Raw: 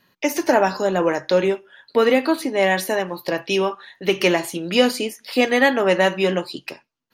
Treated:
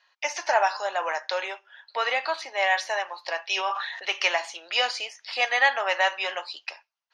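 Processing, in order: elliptic band-pass 720–6000 Hz, stop band 70 dB; 3.54–4.12 sustainer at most 41 dB/s; gain -1.5 dB

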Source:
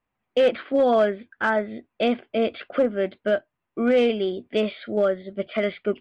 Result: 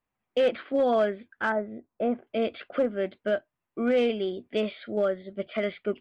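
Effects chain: 1.52–2.27 LPF 1100 Hz 12 dB/oct; gain -4.5 dB

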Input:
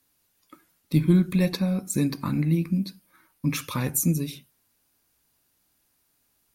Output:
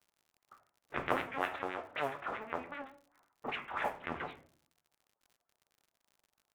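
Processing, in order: cycle switcher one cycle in 2, inverted; 1.13–3.56 HPF 220 Hz 12 dB/oct; LPC vocoder at 8 kHz pitch kept; LFO band-pass sine 7.7 Hz 750–2200 Hz; shoebox room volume 52 m³, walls mixed, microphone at 0.34 m; modulation noise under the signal 26 dB; low-pass opened by the level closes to 840 Hz, open at -31 dBFS; crackle 78/s -54 dBFS; record warp 78 rpm, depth 100 cents

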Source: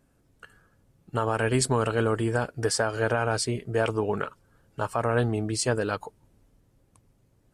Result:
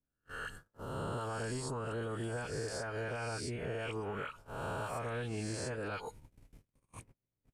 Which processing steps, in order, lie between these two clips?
spectral swells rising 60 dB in 0.74 s; bell 2300 Hz -6 dB 0.52 oct, from 2.33 s +7 dB; dispersion highs, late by 53 ms, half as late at 1300 Hz; compressor 8:1, threshold -35 dBFS, peak gain reduction 16.5 dB; low shelf 120 Hz +5.5 dB; resonator 480 Hz, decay 0.29 s, harmonics all, mix 40%; gate -56 dBFS, range -48 dB; three-band squash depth 70%; gain +2 dB

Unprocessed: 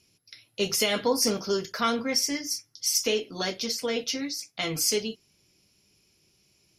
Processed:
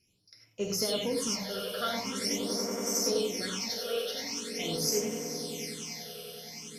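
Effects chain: swelling echo 94 ms, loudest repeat 8, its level -14 dB; non-linear reverb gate 0.12 s rising, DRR 0 dB; phaser stages 8, 0.44 Hz, lowest notch 270–3900 Hz; gain -6.5 dB

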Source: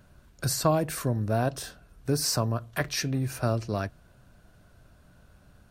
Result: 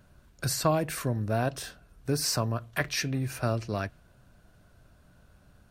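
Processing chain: dynamic EQ 2300 Hz, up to +5 dB, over -49 dBFS, Q 1.1; gain -2 dB

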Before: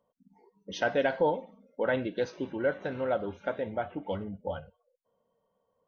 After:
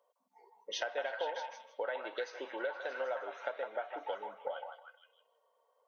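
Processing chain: HPF 500 Hz 24 dB/oct; compressor 6:1, threshold -38 dBFS, peak gain reduction 14 dB; on a send: delay with a stepping band-pass 0.157 s, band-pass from 1000 Hz, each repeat 0.7 oct, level -1.5 dB; on the sum: gain +3 dB

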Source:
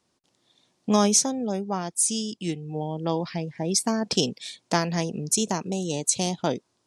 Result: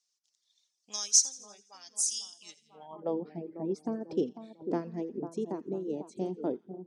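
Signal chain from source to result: split-band echo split 1300 Hz, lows 0.496 s, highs 84 ms, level -8 dB; reverb removal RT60 1.1 s; band-pass sweep 5900 Hz -> 350 Hz, 2.63–3.15

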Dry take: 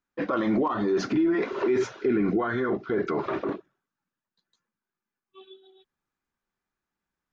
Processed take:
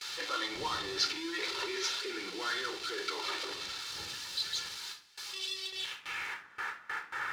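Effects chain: zero-crossing step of -31.5 dBFS; wind noise 93 Hz -25 dBFS; gate with hold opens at -28 dBFS; low shelf 110 Hz -11.5 dB; reverb RT60 0.50 s, pre-delay 11 ms, DRR 9 dB; band-pass sweep 4200 Hz -> 1600 Hz, 5.6–6.52; gain +7.5 dB

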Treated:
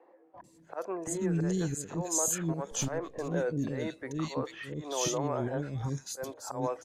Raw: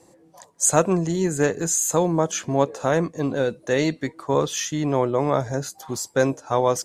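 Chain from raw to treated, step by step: 2.37–2.92 half-wave gain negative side -7 dB; high shelf 2900 Hz -4 dB; auto swell 0.329 s; limiter -18 dBFS, peak gain reduction 11.5 dB; three bands offset in time mids, lows, highs 0.34/0.44 s, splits 360/2300 Hz; gain -1.5 dB

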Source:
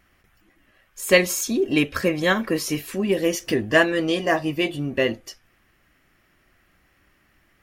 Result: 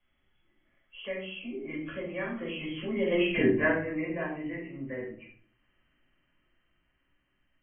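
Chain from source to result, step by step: nonlinear frequency compression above 1900 Hz 4:1; Doppler pass-by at 3.34, 14 m/s, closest 1.8 m; shoebox room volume 380 m³, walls furnished, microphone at 5.6 m; three-band squash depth 40%; gain -7 dB

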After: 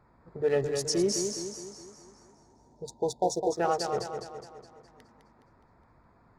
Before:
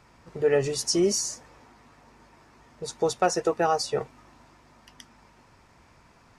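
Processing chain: Wiener smoothing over 15 samples; spectral delete 2.32–3.52, 1000–3400 Hz; warbling echo 0.208 s, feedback 50%, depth 57 cents, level -6.5 dB; gain -4 dB

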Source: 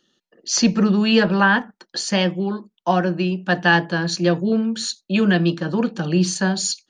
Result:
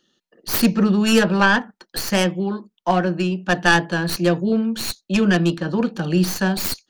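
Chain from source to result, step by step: tracing distortion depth 0.22 ms

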